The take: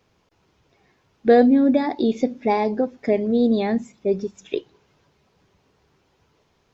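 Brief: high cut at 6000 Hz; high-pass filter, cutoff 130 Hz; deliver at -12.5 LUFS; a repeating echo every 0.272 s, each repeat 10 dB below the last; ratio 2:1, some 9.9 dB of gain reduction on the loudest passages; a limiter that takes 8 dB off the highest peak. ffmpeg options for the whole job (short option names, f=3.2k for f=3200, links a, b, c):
-af "highpass=130,lowpass=6k,acompressor=threshold=-28dB:ratio=2,alimiter=limit=-21dB:level=0:latency=1,aecho=1:1:272|544|816|1088:0.316|0.101|0.0324|0.0104,volume=18dB"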